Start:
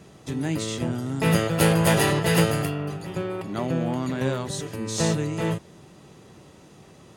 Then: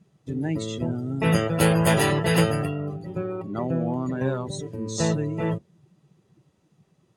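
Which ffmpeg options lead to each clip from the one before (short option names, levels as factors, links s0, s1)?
-af "afftdn=nr=19:nf=-33"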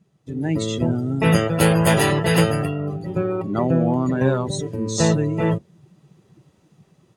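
-af "dynaudnorm=f=310:g=3:m=2.99,volume=0.794"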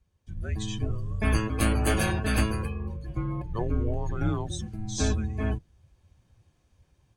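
-af "afreqshift=-230,volume=0.422"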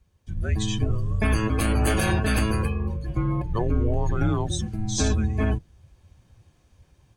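-af "alimiter=limit=0.106:level=0:latency=1:release=104,volume=2.11"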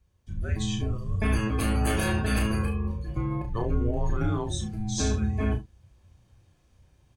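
-af "aecho=1:1:33|71:0.596|0.224,volume=0.562"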